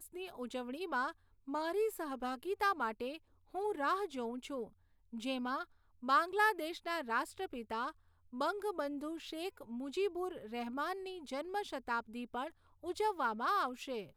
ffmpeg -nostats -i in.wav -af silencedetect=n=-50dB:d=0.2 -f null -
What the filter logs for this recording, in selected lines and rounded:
silence_start: 1.12
silence_end: 1.48 | silence_duration: 0.36
silence_start: 3.17
silence_end: 3.54 | silence_duration: 0.37
silence_start: 4.67
silence_end: 5.13 | silence_duration: 0.45
silence_start: 5.64
silence_end: 6.03 | silence_duration: 0.39
silence_start: 7.91
silence_end: 8.33 | silence_duration: 0.42
silence_start: 12.50
silence_end: 12.83 | silence_duration: 0.33